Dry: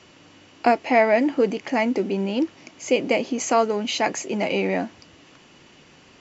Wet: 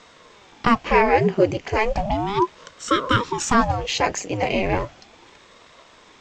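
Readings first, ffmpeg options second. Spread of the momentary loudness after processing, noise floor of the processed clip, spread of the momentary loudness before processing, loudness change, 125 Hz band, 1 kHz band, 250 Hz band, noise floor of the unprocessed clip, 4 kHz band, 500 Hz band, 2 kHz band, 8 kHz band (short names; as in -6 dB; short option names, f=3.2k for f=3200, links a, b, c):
8 LU, -51 dBFS, 8 LU, +1.0 dB, +9.0 dB, +4.0 dB, -0.5 dB, -52 dBFS, +2.5 dB, -1.0 dB, +2.0 dB, n/a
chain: -af "aphaser=in_gain=1:out_gain=1:delay=3.6:decay=0.29:speed=1.9:type=triangular,aeval=exprs='val(0)*sin(2*PI*460*n/s+460*0.8/0.35*sin(2*PI*0.35*n/s))':c=same,volume=4dB"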